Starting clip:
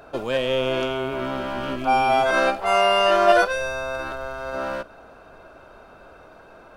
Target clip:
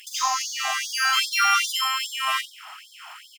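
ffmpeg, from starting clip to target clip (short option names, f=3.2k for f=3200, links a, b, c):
-filter_complex "[0:a]equalizer=f=110:t=o:w=2.2:g=14,acrossover=split=2000|4300[a][b][c];[a]acompressor=threshold=-21dB:ratio=4[d];[b]acompressor=threshold=-38dB:ratio=4[e];[c]acompressor=threshold=-55dB:ratio=4[f];[d][e][f]amix=inputs=3:normalize=0,crystalizer=i=3.5:c=0,asplit=2[g][h];[h]aecho=0:1:87|174|261|348|435:0.447|0.183|0.0751|0.0308|0.0126[i];[g][i]amix=inputs=2:normalize=0,asetrate=88200,aresample=44100,afftfilt=real='re*gte(b*sr/1024,630*pow(3300/630,0.5+0.5*sin(2*PI*2.5*pts/sr)))':imag='im*gte(b*sr/1024,630*pow(3300/630,0.5+0.5*sin(2*PI*2.5*pts/sr)))':win_size=1024:overlap=0.75,volume=2.5dB"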